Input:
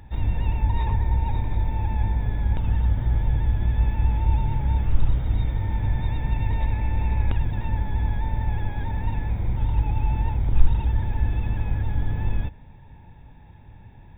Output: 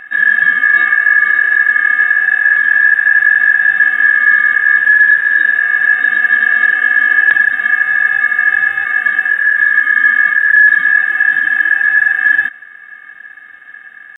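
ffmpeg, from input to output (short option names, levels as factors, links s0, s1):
-af "asetrate=24046,aresample=44100,atempo=1.83401,aeval=exprs='val(0)*sin(2*PI*1700*n/s)':c=same,apsyclip=6.31,volume=0.794"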